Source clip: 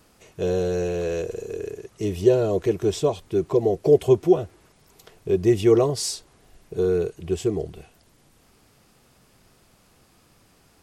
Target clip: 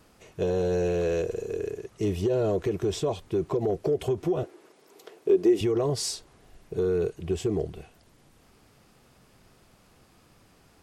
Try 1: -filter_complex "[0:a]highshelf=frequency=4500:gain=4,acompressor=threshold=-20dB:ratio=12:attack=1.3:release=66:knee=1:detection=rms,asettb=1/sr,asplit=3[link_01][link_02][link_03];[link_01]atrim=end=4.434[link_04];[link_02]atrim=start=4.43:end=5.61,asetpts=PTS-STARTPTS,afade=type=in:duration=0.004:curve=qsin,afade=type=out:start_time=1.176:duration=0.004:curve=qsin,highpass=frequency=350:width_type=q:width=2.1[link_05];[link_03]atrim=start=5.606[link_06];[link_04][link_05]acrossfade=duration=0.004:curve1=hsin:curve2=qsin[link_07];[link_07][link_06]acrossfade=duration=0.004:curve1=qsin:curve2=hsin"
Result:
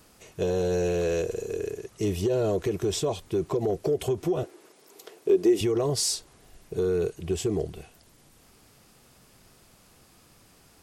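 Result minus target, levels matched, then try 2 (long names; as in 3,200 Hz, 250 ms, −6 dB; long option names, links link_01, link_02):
8,000 Hz band +5.5 dB
-filter_complex "[0:a]highshelf=frequency=4500:gain=-5,acompressor=threshold=-20dB:ratio=12:attack=1.3:release=66:knee=1:detection=rms,asettb=1/sr,asplit=3[link_01][link_02][link_03];[link_01]atrim=end=4.434[link_04];[link_02]atrim=start=4.43:end=5.61,asetpts=PTS-STARTPTS,afade=type=in:duration=0.004:curve=qsin,afade=type=out:start_time=1.176:duration=0.004:curve=qsin,highpass=frequency=350:width_type=q:width=2.1[link_05];[link_03]atrim=start=5.606[link_06];[link_04][link_05]acrossfade=duration=0.004:curve1=hsin:curve2=qsin[link_07];[link_07][link_06]acrossfade=duration=0.004:curve1=qsin:curve2=hsin"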